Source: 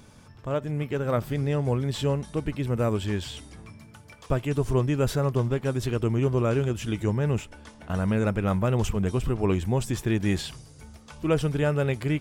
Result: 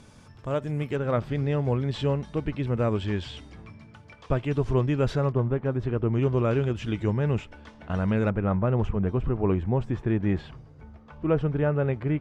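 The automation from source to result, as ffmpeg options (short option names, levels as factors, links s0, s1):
-af "asetnsamples=n=441:p=0,asendcmd='0.96 lowpass f 3900;5.32 lowpass f 1600;6.13 lowpass f 3800;8.3 lowpass f 1600',lowpass=10000"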